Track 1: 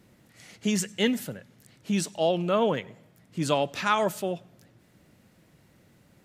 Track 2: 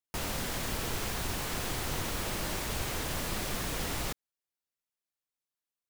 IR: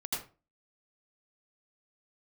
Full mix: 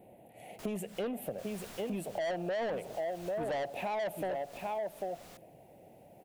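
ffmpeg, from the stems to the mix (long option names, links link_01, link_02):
-filter_complex "[0:a]firequalizer=gain_entry='entry(260,0);entry(730,14);entry(1200,-20);entry(2500,-4);entry(5200,-28);entry(10000,-3)':delay=0.05:min_phase=1,volume=2.5dB,asplit=3[link_01][link_02][link_03];[link_02]volume=-9.5dB[link_04];[1:a]acompressor=mode=upward:threshold=-42dB:ratio=2.5,adelay=450,volume=-14dB,asplit=2[link_05][link_06];[link_06]volume=-4.5dB[link_07];[link_03]apad=whole_len=279793[link_08];[link_05][link_08]sidechaincompress=threshold=-39dB:ratio=8:attack=35:release=172[link_09];[link_04][link_07]amix=inputs=2:normalize=0,aecho=0:1:794:1[link_10];[link_01][link_09][link_10]amix=inputs=3:normalize=0,lowshelf=frequency=200:gain=-9,asoftclip=type=tanh:threshold=-20.5dB,acompressor=threshold=-34dB:ratio=6"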